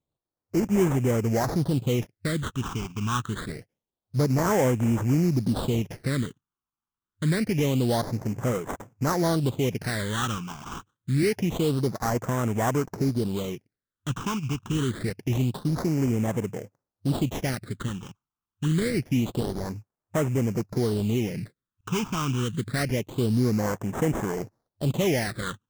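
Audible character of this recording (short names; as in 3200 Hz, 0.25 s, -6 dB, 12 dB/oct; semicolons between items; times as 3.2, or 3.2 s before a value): aliases and images of a low sample rate 2600 Hz, jitter 20%; phasing stages 8, 0.26 Hz, lowest notch 550–4200 Hz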